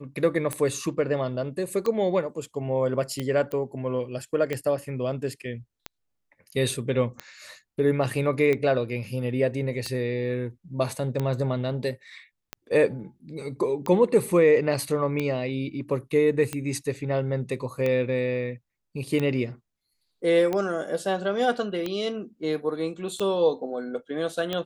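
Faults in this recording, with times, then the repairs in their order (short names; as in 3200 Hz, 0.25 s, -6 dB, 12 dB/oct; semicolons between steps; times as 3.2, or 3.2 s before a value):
tick 45 rpm -15 dBFS
3.52 pop -20 dBFS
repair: de-click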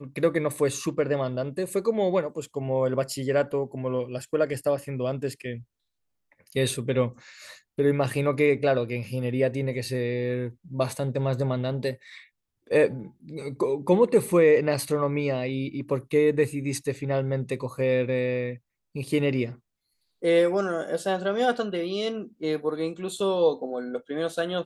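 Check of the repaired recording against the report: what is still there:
none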